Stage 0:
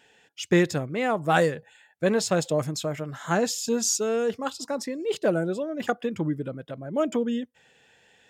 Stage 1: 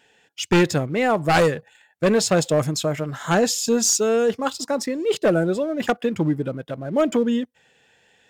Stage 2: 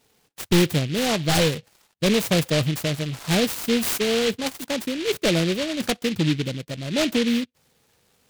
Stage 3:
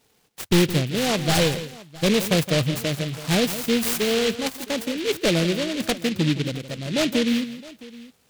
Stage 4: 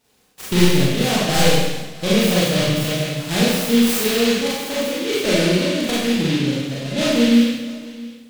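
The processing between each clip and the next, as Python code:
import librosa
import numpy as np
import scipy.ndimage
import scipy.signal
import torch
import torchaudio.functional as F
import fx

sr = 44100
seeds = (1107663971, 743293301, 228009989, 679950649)

y1 = np.minimum(x, 2.0 * 10.0 ** (-17.5 / 20.0) - x)
y1 = fx.leveller(y1, sr, passes=1)
y1 = y1 * 10.0 ** (2.5 / 20.0)
y2 = fx.low_shelf(y1, sr, hz=270.0, db=9.5)
y2 = fx.noise_mod_delay(y2, sr, seeds[0], noise_hz=2800.0, depth_ms=0.17)
y2 = y2 * 10.0 ** (-5.5 / 20.0)
y3 = fx.echo_multitap(y2, sr, ms=(166, 664), db=(-13.0, -20.0))
y4 = fx.rev_schroeder(y3, sr, rt60_s=1.0, comb_ms=30, drr_db=-7.0)
y4 = y4 * 10.0 ** (-3.5 / 20.0)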